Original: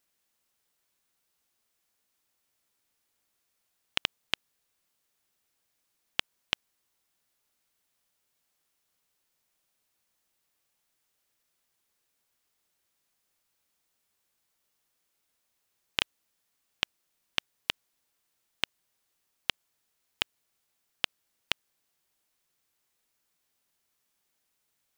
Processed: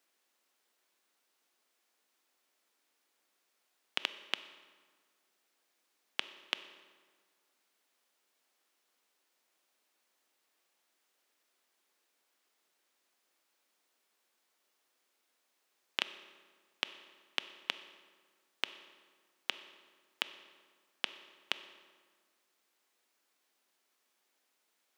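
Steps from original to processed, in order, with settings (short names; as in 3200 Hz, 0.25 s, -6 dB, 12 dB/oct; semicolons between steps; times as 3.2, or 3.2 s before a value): HPF 250 Hz 24 dB/oct; high shelf 6200 Hz -8.5 dB; reverb RT60 1.6 s, pre-delay 3 ms, DRR 18 dB; limiter -14.5 dBFS, peak gain reduction 8 dB; gain +4 dB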